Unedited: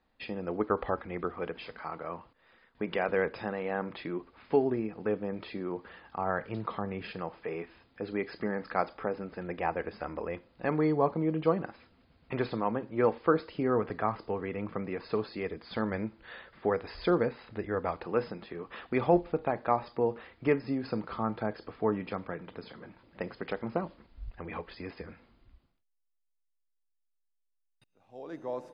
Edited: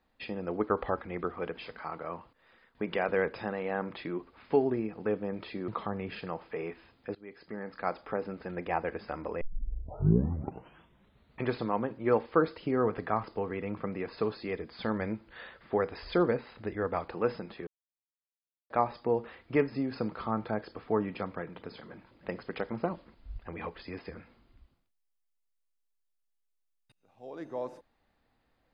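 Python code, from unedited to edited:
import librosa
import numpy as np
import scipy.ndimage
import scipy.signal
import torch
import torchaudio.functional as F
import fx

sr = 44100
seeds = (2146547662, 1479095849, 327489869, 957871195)

y = fx.edit(x, sr, fx.cut(start_s=5.68, length_s=0.92),
    fx.fade_in_from(start_s=8.07, length_s=1.06, floor_db=-22.5),
    fx.tape_start(start_s=10.33, length_s=2.08),
    fx.silence(start_s=18.59, length_s=1.03), tone=tone)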